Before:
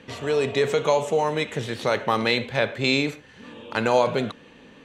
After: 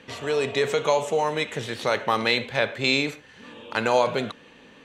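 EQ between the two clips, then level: bass shelf 460 Hz -5.5 dB; +1.0 dB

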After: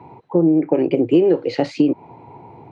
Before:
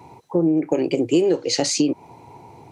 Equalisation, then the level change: high-pass 92 Hz; distance through air 470 m; +4.5 dB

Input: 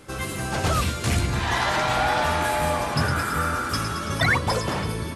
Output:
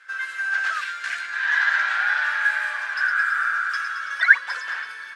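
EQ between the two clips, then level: resonant high-pass 1.6 kHz, resonance Q 11; low-pass 5.8 kHz 12 dB/octave; -7.0 dB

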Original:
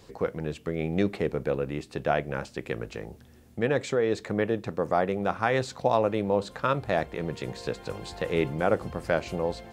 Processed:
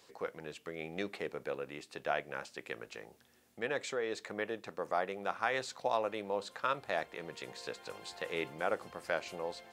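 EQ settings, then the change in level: high-pass 960 Hz 6 dB/octave; -4.0 dB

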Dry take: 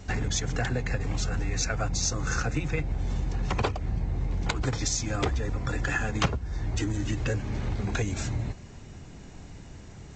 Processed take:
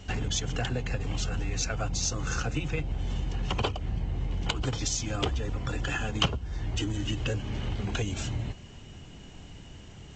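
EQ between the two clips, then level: dynamic bell 1.9 kHz, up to -5 dB, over -46 dBFS, Q 2.4; peaking EQ 3 kHz +14 dB 0.26 oct; -2.0 dB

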